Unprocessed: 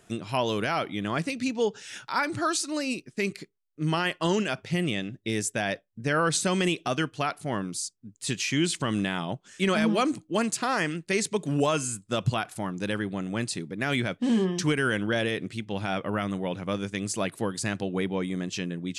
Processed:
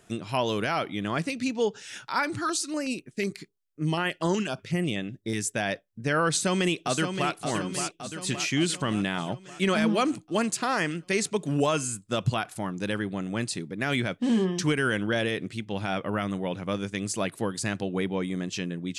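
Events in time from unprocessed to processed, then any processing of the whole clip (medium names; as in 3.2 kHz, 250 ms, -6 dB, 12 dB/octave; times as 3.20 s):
2.37–5.46 s: step-sequenced notch 8.1 Hz 570–5100 Hz
6.29–7.34 s: echo throw 570 ms, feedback 60%, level -7 dB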